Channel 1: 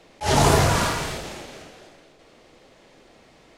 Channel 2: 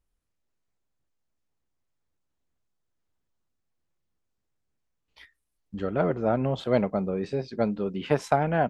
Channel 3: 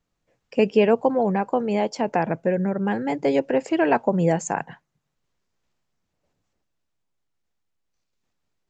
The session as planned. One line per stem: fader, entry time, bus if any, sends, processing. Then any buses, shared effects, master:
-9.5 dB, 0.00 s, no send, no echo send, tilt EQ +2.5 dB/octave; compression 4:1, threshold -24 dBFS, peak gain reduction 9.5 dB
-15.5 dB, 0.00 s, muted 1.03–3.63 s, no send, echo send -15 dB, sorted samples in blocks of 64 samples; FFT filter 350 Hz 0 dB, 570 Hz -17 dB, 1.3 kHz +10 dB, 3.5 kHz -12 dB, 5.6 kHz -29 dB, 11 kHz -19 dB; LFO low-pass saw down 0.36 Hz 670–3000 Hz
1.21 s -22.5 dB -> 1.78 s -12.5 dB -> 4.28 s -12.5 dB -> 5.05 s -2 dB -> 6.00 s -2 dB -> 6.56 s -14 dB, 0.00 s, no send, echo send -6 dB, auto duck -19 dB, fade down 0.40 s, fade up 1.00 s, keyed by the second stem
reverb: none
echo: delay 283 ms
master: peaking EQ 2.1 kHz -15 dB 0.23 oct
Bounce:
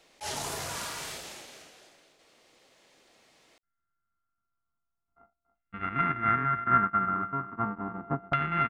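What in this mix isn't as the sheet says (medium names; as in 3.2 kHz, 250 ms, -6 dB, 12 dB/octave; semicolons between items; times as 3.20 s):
stem 2 -15.5 dB -> -6.5 dB; stem 3: muted; master: missing peaking EQ 2.1 kHz -15 dB 0.23 oct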